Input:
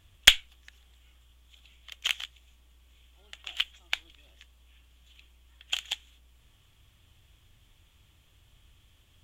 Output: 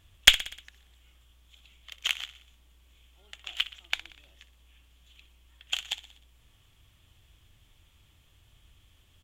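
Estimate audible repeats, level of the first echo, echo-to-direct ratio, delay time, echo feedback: 4, -16.0 dB, -14.5 dB, 61 ms, 57%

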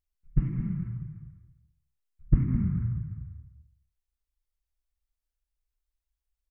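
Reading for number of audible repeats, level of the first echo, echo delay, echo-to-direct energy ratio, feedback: 1, -12.5 dB, 212 ms, -12.5 dB, no regular repeats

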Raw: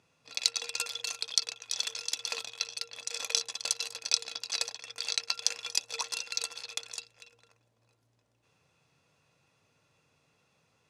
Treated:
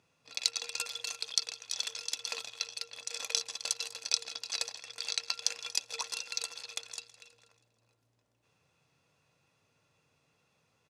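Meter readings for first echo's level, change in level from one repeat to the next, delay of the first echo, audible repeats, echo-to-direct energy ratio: -19.0 dB, -5.0 dB, 161 ms, 4, -17.5 dB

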